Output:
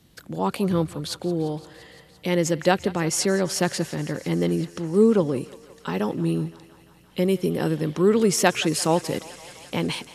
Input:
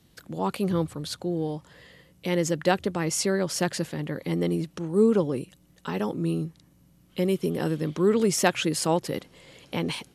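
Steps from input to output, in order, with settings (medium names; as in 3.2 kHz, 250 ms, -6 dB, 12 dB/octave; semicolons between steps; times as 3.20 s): thinning echo 172 ms, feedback 82%, high-pass 430 Hz, level -18 dB; trim +3 dB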